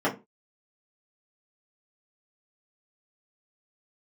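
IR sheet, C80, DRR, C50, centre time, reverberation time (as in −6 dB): 20.0 dB, −7.0 dB, 14.0 dB, 18 ms, 0.25 s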